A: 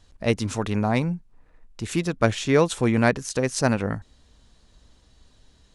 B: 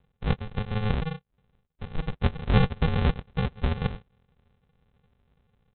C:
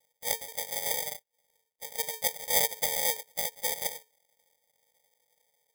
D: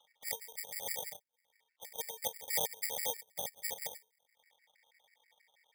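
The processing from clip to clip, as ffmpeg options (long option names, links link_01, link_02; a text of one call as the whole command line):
ffmpeg -i in.wav -af "highpass=240,aresample=8000,acrusher=samples=25:mix=1:aa=0.000001,aresample=44100" out.wav
ffmpeg -i in.wav -af "afreqshift=440,acrusher=samples=32:mix=1:aa=0.000001,crystalizer=i=8:c=0,volume=-15.5dB" out.wav
ffmpeg -i in.wav -filter_complex "[0:a]acrossover=split=190|970|3400[link_01][link_02][link_03][link_04];[link_03]acompressor=mode=upward:threshold=-45dB:ratio=2.5[link_05];[link_01][link_02][link_05][link_04]amix=inputs=4:normalize=0,afftfilt=real='re*gt(sin(2*PI*6.2*pts/sr)*(1-2*mod(floor(b*sr/1024/1400),2)),0)':imag='im*gt(sin(2*PI*6.2*pts/sr)*(1-2*mod(floor(b*sr/1024/1400),2)),0)':win_size=1024:overlap=0.75,volume=-5dB" out.wav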